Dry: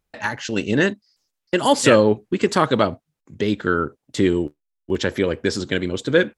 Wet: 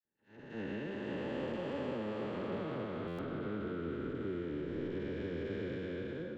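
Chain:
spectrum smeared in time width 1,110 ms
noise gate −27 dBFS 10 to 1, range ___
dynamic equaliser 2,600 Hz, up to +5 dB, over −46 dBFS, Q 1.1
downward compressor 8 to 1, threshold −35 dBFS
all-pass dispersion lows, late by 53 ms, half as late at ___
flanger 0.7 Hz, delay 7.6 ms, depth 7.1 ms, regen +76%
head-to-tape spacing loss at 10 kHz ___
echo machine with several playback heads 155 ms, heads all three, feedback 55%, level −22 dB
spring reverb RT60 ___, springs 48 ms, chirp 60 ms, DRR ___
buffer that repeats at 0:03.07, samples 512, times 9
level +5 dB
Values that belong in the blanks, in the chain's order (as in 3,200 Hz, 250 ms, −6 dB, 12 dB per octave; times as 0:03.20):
−56 dB, 1,100 Hz, 29 dB, 3.6 s, 11 dB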